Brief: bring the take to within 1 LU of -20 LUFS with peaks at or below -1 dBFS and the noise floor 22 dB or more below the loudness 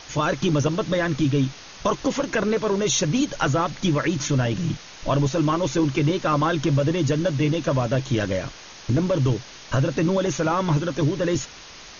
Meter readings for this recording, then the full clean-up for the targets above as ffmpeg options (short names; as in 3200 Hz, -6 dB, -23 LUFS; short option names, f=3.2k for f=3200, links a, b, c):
noise floor -43 dBFS; noise floor target -45 dBFS; loudness -23.0 LUFS; peak -10.5 dBFS; loudness target -20.0 LUFS
-> -af "afftdn=nr=6:nf=-43"
-af "volume=3dB"